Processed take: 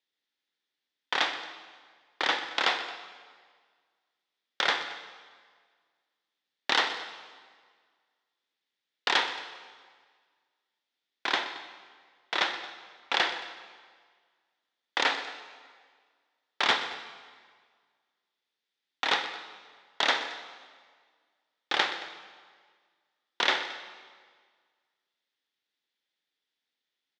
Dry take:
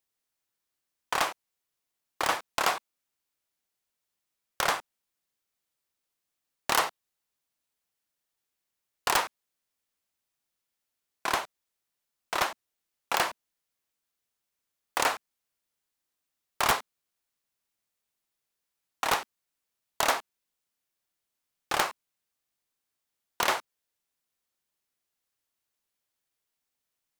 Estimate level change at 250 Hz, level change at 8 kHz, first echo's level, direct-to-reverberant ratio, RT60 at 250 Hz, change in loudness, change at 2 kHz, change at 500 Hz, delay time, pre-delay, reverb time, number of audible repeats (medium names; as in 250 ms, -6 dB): 0.0 dB, -9.5 dB, -14.5 dB, 8.5 dB, 1.6 s, +0.5 dB, +3.0 dB, -2.0 dB, 124 ms, 39 ms, 1.7 s, 2